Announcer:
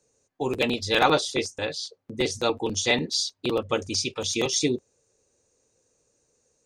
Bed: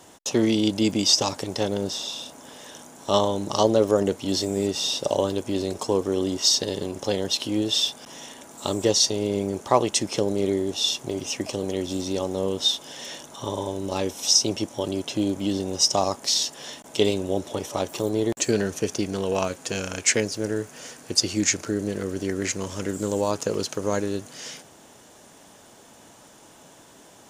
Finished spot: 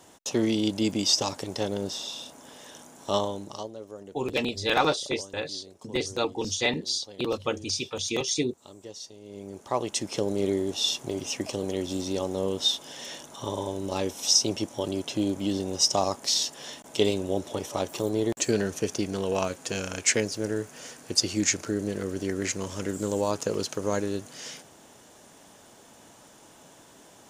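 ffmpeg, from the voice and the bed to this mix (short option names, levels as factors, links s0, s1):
-filter_complex "[0:a]adelay=3750,volume=0.708[s0];[1:a]volume=5.96,afade=t=out:st=3.06:d=0.64:silence=0.125893,afade=t=in:st=9.23:d=1.2:silence=0.105925[s1];[s0][s1]amix=inputs=2:normalize=0"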